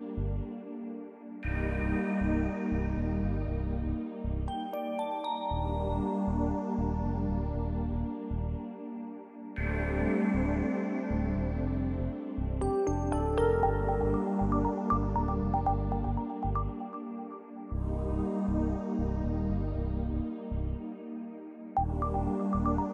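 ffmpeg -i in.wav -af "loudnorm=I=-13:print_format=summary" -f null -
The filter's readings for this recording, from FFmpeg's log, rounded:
Input Integrated:    -32.4 LUFS
Input True Peak:     -16.0 dBTP
Input LRA:             4.1 LU
Input Threshold:     -42.6 LUFS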